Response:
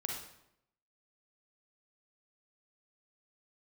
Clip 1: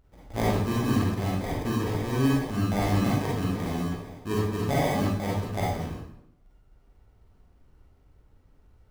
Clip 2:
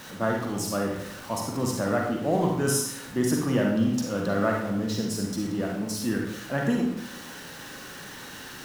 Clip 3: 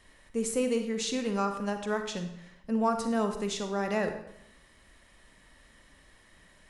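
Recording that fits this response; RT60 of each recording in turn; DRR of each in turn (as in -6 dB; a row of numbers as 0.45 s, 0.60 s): 2; 0.80 s, 0.80 s, 0.75 s; -6.0 dB, -0.5 dB, 6.0 dB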